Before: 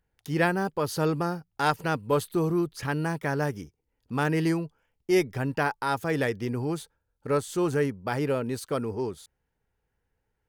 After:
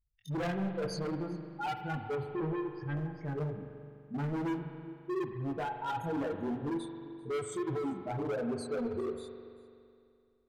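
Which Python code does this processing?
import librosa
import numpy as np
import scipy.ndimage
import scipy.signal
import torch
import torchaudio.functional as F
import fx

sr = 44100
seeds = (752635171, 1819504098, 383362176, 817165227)

y = fx.spec_expand(x, sr, power=3.9)
y = fx.rider(y, sr, range_db=5, speed_s=2.0)
y = fx.dynamic_eq(y, sr, hz=330.0, q=1.6, threshold_db=-37.0, ratio=4.0, max_db=6)
y = fx.chorus_voices(y, sr, voices=2, hz=1.0, base_ms=23, depth_ms=3.0, mix_pct=45)
y = y + 10.0 ** (-22.0 / 20.0) * np.pad(y, (int(393 * sr / 1000.0), 0))[:len(y)]
y = np.clip(10.0 ** (28.5 / 20.0) * y, -1.0, 1.0) / 10.0 ** (28.5 / 20.0)
y = fx.air_absorb(y, sr, metres=400.0, at=(2.15, 2.97))
y = fx.rev_spring(y, sr, rt60_s=2.5, pass_ms=(42,), chirp_ms=40, drr_db=6.5)
y = y * 10.0 ** (-3.5 / 20.0)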